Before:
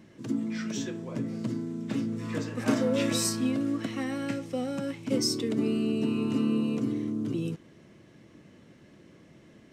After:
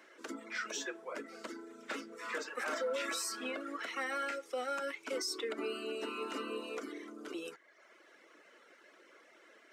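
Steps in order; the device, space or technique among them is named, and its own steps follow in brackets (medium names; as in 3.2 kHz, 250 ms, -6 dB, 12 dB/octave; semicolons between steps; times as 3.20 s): reverb removal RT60 0.88 s; laptop speaker (high-pass 420 Hz 24 dB/octave; peaking EQ 1.4 kHz +11 dB 0.4 oct; peaking EQ 2.1 kHz +4 dB 0.43 oct; peak limiter -28.5 dBFS, peak gain reduction 11.5 dB); high-pass 110 Hz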